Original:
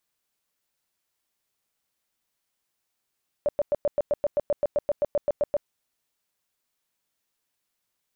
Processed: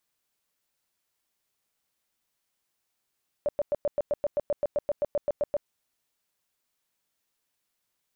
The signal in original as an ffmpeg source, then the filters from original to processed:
-f lavfi -i "aevalsrc='0.112*sin(2*PI*584*mod(t,0.13))*lt(mod(t,0.13),16/584)':d=2.21:s=44100"
-af "alimiter=limit=-22dB:level=0:latency=1:release=115"

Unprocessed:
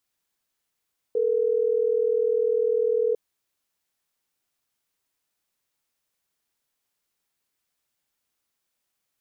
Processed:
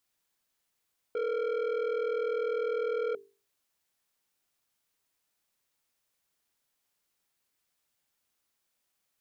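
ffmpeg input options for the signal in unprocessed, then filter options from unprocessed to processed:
-f lavfi -i "aevalsrc='0.075*(sin(2*PI*440*t)+sin(2*PI*480*t))*clip(min(mod(t,6),2-mod(t,6))/0.005,0,1)':d=3.12:s=44100"
-af "asoftclip=type=tanh:threshold=-28.5dB,bandreject=f=50:t=h:w=6,bandreject=f=100:t=h:w=6,bandreject=f=150:t=h:w=6,bandreject=f=200:t=h:w=6,bandreject=f=250:t=h:w=6,bandreject=f=300:t=h:w=6,bandreject=f=350:t=h:w=6,bandreject=f=400:t=h:w=6,bandreject=f=450:t=h:w=6"

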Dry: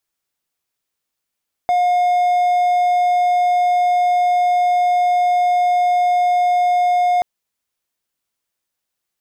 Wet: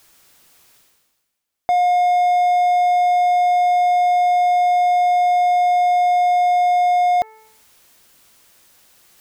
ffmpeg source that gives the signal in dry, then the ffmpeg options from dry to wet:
-f lavfi -i "aevalsrc='0.299*(1-4*abs(mod(715*t+0.25,1)-0.5))':d=5.53:s=44100"
-af "bandreject=f=438.2:t=h:w=4,bandreject=f=876.4:t=h:w=4,bandreject=f=1.3146k:t=h:w=4,bandreject=f=1.7528k:t=h:w=4,bandreject=f=2.191k:t=h:w=4,bandreject=f=2.6292k:t=h:w=4,areverse,acompressor=mode=upward:threshold=-31dB:ratio=2.5,areverse"

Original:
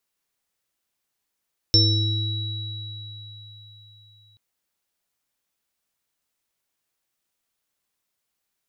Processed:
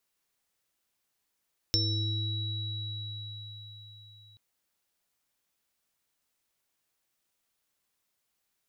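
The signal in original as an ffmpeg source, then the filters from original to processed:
-f lavfi -i "aevalsrc='0.141*pow(10,-3*t/3.95)*sin(2*PI*105*t)+0.0596*pow(10,-3*t/2.06)*sin(2*PI*327*t)+0.0355*pow(10,-3*t/0.72)*sin(2*PI*479*t)+0.0841*pow(10,-3*t/4.52)*sin(2*PI*3900*t)+0.251*pow(10,-3*t/0.64)*sin(2*PI*5390*t)':d=2.63:s=44100"
-af "acompressor=threshold=-34dB:ratio=2"

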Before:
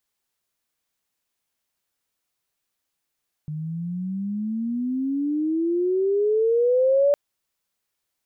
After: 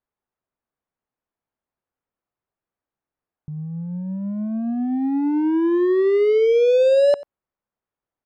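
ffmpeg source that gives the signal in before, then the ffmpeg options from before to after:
-f lavfi -i "aevalsrc='pow(10,(-27.5+13*t/3.66)/20)*sin(2*PI*150*3.66/log(580/150)*(exp(log(580/150)*t/3.66)-1))':d=3.66:s=44100"
-filter_complex "[0:a]lowpass=1.2k,asplit=2[a][b];[b]acrusher=bits=3:mix=0:aa=0.5,volume=-5dB[c];[a][c]amix=inputs=2:normalize=0,aecho=1:1:91:0.1"

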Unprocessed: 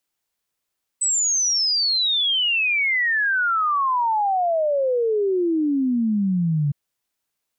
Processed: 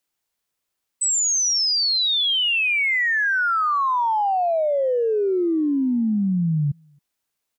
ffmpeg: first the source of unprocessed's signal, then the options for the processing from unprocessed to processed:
-f lavfi -i "aevalsrc='0.133*clip(min(t,5.71-t)/0.01,0,1)*sin(2*PI*8100*5.71/log(140/8100)*(exp(log(140/8100)*t/5.71)-1))':d=5.71:s=44100"
-filter_complex "[0:a]asplit=2[a][b];[b]adelay=270,highpass=300,lowpass=3.4k,asoftclip=type=hard:threshold=-25.5dB,volume=-20dB[c];[a][c]amix=inputs=2:normalize=0"

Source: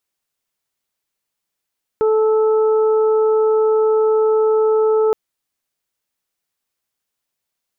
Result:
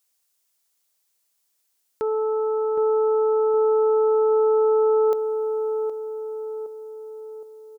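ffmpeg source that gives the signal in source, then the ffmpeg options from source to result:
-f lavfi -i "aevalsrc='0.251*sin(2*PI*436*t)+0.0501*sin(2*PI*872*t)+0.0422*sin(2*PI*1308*t)':d=3.12:s=44100"
-filter_complex "[0:a]bass=f=250:g=-10,treble=f=4k:g=10,alimiter=limit=-18dB:level=0:latency=1:release=21,asplit=2[a][b];[b]adelay=766,lowpass=f=940:p=1,volume=-5.5dB,asplit=2[c][d];[d]adelay=766,lowpass=f=940:p=1,volume=0.54,asplit=2[e][f];[f]adelay=766,lowpass=f=940:p=1,volume=0.54,asplit=2[g][h];[h]adelay=766,lowpass=f=940:p=1,volume=0.54,asplit=2[i][j];[j]adelay=766,lowpass=f=940:p=1,volume=0.54,asplit=2[k][l];[l]adelay=766,lowpass=f=940:p=1,volume=0.54,asplit=2[m][n];[n]adelay=766,lowpass=f=940:p=1,volume=0.54[o];[c][e][g][i][k][m][o]amix=inputs=7:normalize=0[p];[a][p]amix=inputs=2:normalize=0"

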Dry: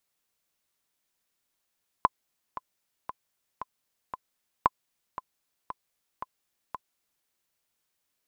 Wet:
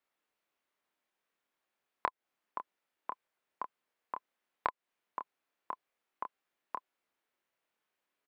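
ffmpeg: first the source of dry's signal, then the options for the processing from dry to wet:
-f lavfi -i "aevalsrc='pow(10,(-6.5-15*gte(mod(t,5*60/115),60/115))/20)*sin(2*PI*1020*mod(t,60/115))*exp(-6.91*mod(t,60/115)/0.03)':d=5.21:s=44100"
-filter_complex "[0:a]acrossover=split=220 2900:gain=0.178 1 0.178[a][b][c];[a][b][c]amix=inputs=3:normalize=0,acompressor=threshold=-30dB:ratio=6,asplit=2[d][e];[e]adelay=27,volume=-5.5dB[f];[d][f]amix=inputs=2:normalize=0"

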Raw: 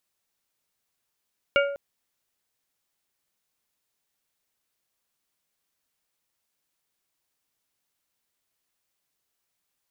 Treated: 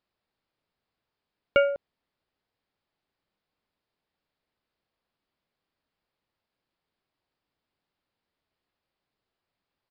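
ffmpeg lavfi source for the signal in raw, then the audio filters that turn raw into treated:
-f lavfi -i "aevalsrc='0.133*pow(10,-3*t/0.77)*sin(2*PI*563*t)+0.106*pow(10,-3*t/0.405)*sin(2*PI*1407.5*t)+0.0841*pow(10,-3*t/0.292)*sin(2*PI*2252*t)+0.0668*pow(10,-3*t/0.25)*sin(2*PI*2815*t)':d=0.2:s=44100"
-af "tiltshelf=f=1.4k:g=5,aresample=11025,aresample=44100"

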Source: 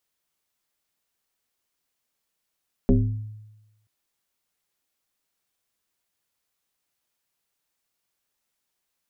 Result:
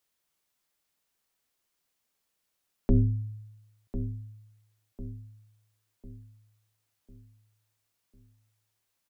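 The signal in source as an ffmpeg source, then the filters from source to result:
-f lavfi -i "aevalsrc='0.251*pow(10,-3*t/1.04)*sin(2*PI*107*t+2.2*pow(10,-3*t/0.79)*sin(2*PI*1.36*107*t))':d=0.98:s=44100"
-filter_complex "[0:a]acrossover=split=130[a][b];[b]alimiter=limit=-20dB:level=0:latency=1:release=24[c];[a][c]amix=inputs=2:normalize=0,asplit=2[d][e];[e]adelay=1049,lowpass=f=1k:p=1,volume=-10.5dB,asplit=2[f][g];[g]adelay=1049,lowpass=f=1k:p=1,volume=0.46,asplit=2[h][i];[i]adelay=1049,lowpass=f=1k:p=1,volume=0.46,asplit=2[j][k];[k]adelay=1049,lowpass=f=1k:p=1,volume=0.46,asplit=2[l][m];[m]adelay=1049,lowpass=f=1k:p=1,volume=0.46[n];[d][f][h][j][l][n]amix=inputs=6:normalize=0"

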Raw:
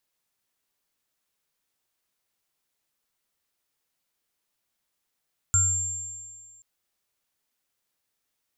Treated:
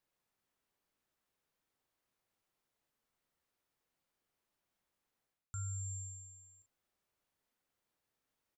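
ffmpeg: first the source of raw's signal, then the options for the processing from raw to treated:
-f lavfi -i "aevalsrc='0.0794*pow(10,-3*t/1.23)*sin(2*PI*97.6*t)+0.0355*pow(10,-3*t/0.38)*sin(2*PI*1380*t)+0.133*pow(10,-3*t/1.92)*sin(2*PI*7360*t)':d=1.08:s=44100"
-filter_complex "[0:a]highshelf=f=2.3k:g=-11,areverse,acompressor=threshold=-39dB:ratio=12,areverse,asplit=2[a][b];[b]adelay=40,volume=-11dB[c];[a][c]amix=inputs=2:normalize=0"

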